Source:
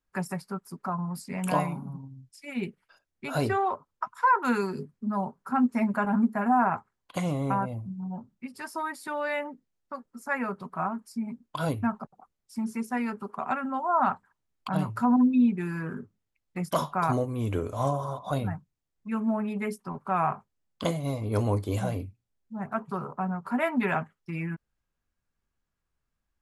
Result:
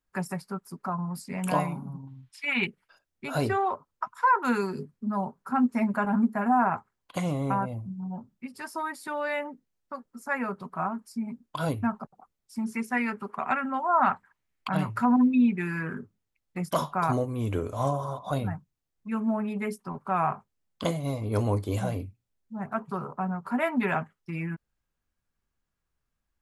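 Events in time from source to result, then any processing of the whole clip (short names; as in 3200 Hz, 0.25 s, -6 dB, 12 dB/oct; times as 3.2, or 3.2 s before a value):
2.07–2.67 band shelf 1800 Hz +14.5 dB 2.6 oct
12.72–15.98 bell 2100 Hz +9 dB 0.96 oct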